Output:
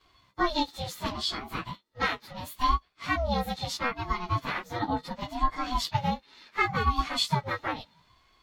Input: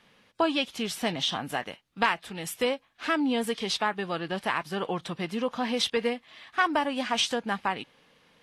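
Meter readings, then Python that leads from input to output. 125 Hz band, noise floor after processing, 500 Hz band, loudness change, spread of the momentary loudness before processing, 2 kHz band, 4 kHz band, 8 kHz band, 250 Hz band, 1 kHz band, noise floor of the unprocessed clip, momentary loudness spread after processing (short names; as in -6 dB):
+8.0 dB, -66 dBFS, -6.5 dB, -1.5 dB, 8 LU, -2.5 dB, -3.0 dB, -5.0 dB, -4.5 dB, +1.5 dB, -65 dBFS, 10 LU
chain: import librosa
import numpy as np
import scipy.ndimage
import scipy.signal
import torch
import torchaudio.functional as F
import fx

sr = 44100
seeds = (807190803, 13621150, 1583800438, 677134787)

y = fx.partial_stretch(x, sr, pct=108)
y = fx.small_body(y, sr, hz=(580.0, 1600.0, 3900.0), ring_ms=35, db=15)
y = fx.ring_lfo(y, sr, carrier_hz=410.0, swing_pct=30, hz=0.72)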